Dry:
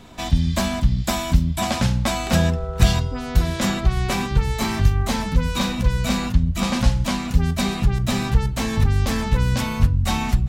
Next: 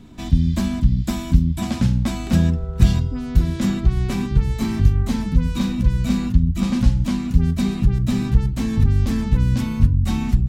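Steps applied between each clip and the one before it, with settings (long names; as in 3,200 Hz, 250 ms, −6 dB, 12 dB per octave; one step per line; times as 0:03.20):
low shelf with overshoot 410 Hz +9 dB, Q 1.5
level −7.5 dB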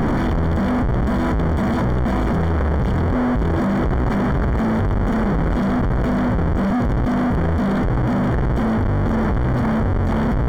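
sign of each sample alone
Savitzky-Golay smoothing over 41 samples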